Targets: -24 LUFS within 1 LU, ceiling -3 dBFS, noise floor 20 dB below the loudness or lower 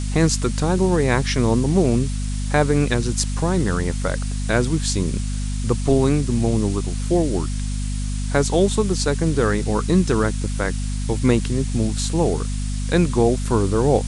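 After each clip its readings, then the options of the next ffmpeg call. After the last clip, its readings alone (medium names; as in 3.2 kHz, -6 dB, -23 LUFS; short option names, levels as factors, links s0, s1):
hum 50 Hz; highest harmonic 250 Hz; hum level -22 dBFS; noise floor -24 dBFS; noise floor target -41 dBFS; loudness -21.0 LUFS; peak level -2.0 dBFS; loudness target -24.0 LUFS
-> -af "bandreject=f=50:t=h:w=4,bandreject=f=100:t=h:w=4,bandreject=f=150:t=h:w=4,bandreject=f=200:t=h:w=4,bandreject=f=250:t=h:w=4"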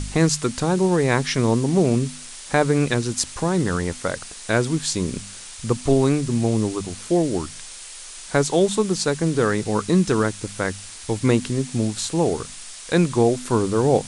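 hum not found; noise floor -39 dBFS; noise floor target -42 dBFS
-> -af "afftdn=nr=6:nf=-39"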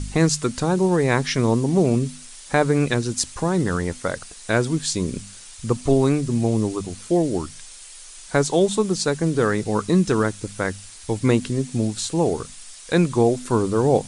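noise floor -42 dBFS; loudness -21.5 LUFS; peak level -2.0 dBFS; loudness target -24.0 LUFS
-> -af "volume=0.75"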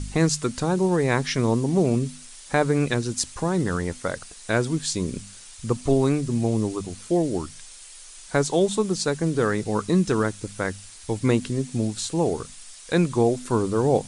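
loudness -24.0 LUFS; peak level -4.5 dBFS; noise floor -44 dBFS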